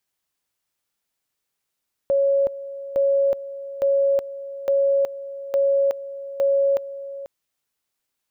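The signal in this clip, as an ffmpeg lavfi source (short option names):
-f lavfi -i "aevalsrc='pow(10,(-15.5-15*gte(mod(t,0.86),0.37))/20)*sin(2*PI*554*t)':d=5.16:s=44100"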